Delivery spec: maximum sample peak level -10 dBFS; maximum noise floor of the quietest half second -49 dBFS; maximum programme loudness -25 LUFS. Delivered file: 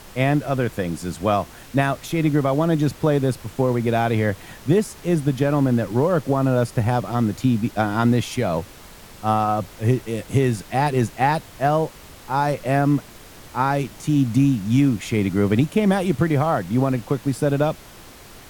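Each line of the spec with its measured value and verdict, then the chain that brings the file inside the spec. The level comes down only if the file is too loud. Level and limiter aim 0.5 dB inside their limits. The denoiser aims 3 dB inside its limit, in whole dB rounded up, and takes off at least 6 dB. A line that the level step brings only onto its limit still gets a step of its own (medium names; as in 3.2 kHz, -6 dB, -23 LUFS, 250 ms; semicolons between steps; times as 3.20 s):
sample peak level -5.5 dBFS: fail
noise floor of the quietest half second -43 dBFS: fail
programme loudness -21.5 LUFS: fail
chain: noise reduction 6 dB, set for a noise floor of -43 dBFS; trim -4 dB; peak limiter -10.5 dBFS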